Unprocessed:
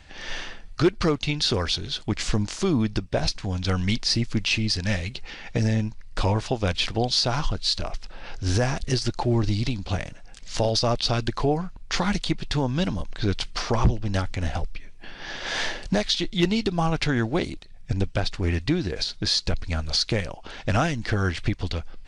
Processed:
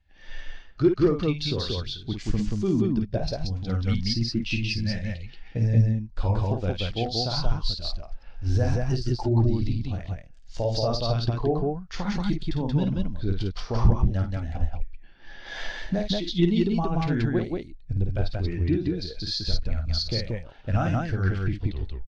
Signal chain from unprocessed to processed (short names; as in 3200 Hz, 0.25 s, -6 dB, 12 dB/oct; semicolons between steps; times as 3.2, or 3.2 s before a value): tape stop at the end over 0.38 s; loudspeakers at several distances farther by 18 m -5 dB, 62 m -1 dB; spectral expander 1.5:1